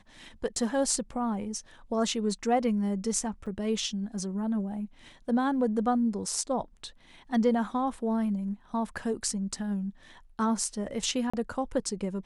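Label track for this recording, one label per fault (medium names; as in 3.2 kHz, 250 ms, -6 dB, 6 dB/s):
3.460000	3.470000	dropout 6.1 ms
11.300000	11.340000	dropout 35 ms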